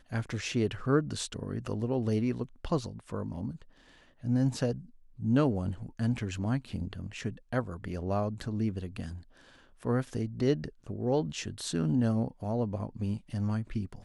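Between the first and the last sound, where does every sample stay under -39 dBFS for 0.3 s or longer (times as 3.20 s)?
3.62–4.24 s
4.79–5.19 s
9.18–9.83 s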